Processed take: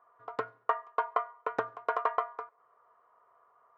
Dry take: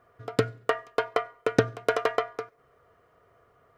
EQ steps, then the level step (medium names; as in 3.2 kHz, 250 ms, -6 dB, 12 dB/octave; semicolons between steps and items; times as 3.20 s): band-pass filter 1 kHz, Q 4.9; +6.5 dB